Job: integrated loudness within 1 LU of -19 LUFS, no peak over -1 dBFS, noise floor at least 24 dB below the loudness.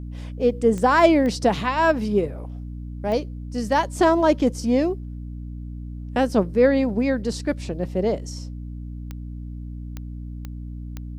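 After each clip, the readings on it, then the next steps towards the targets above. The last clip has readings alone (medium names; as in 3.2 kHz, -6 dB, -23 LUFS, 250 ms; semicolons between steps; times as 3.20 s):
clicks found 7; hum 60 Hz; highest harmonic 300 Hz; hum level -30 dBFS; loudness -21.5 LUFS; peak level -4.0 dBFS; loudness target -19.0 LUFS
-> de-click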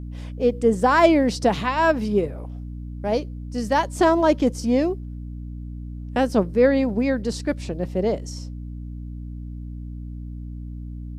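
clicks found 0; hum 60 Hz; highest harmonic 300 Hz; hum level -30 dBFS
-> de-hum 60 Hz, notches 5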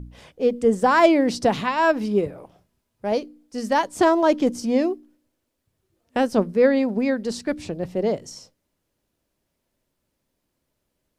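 hum not found; loudness -21.5 LUFS; peak level -4.0 dBFS; loudness target -19.0 LUFS
-> trim +2.5 dB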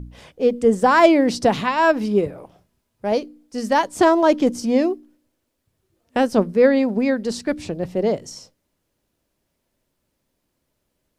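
loudness -19.0 LUFS; peak level -1.5 dBFS; noise floor -74 dBFS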